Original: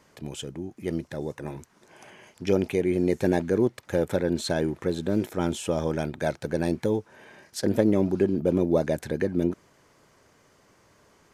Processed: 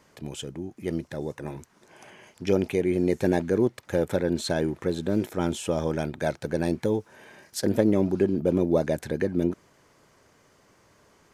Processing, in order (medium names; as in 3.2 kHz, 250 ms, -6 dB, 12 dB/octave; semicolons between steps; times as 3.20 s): 6.99–7.70 s: treble shelf 5.3 kHz -> 10 kHz +6.5 dB